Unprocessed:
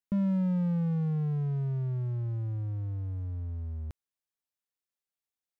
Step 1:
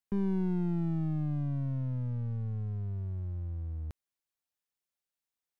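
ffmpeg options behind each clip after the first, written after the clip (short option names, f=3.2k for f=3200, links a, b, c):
-af "aeval=exprs='clip(val(0),-1,0.0168)':c=same"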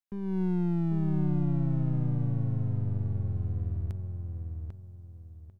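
-filter_complex "[0:a]dynaudnorm=f=210:g=3:m=10dB,asplit=2[a][b];[b]adelay=795,lowpass=f=1.9k:p=1,volume=-3.5dB,asplit=2[c][d];[d]adelay=795,lowpass=f=1.9k:p=1,volume=0.31,asplit=2[e][f];[f]adelay=795,lowpass=f=1.9k:p=1,volume=0.31,asplit=2[g][h];[h]adelay=795,lowpass=f=1.9k:p=1,volume=0.31[i];[a][c][e][g][i]amix=inputs=5:normalize=0,volume=-7dB"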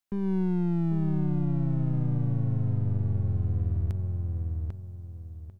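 -af "acompressor=threshold=-28dB:ratio=6,volume=6dB"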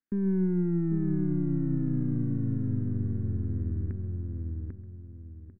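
-af "firequalizer=gain_entry='entry(150,0);entry(250,12);entry(680,-12);entry(1700,5);entry(3200,-23)':delay=0.05:min_phase=1,aecho=1:1:133:0.15,volume=-4dB"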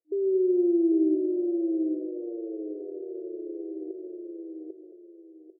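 -filter_complex "[0:a]equalizer=f=470:w=1.3:g=4.5,asplit=2[a][b];[b]adelay=220,highpass=300,lowpass=3.4k,asoftclip=type=hard:threshold=-26.5dB,volume=-9dB[c];[a][c]amix=inputs=2:normalize=0,afftfilt=real='re*between(b*sr/4096,310,720)':imag='im*between(b*sr/4096,310,720)':win_size=4096:overlap=0.75,volume=8.5dB"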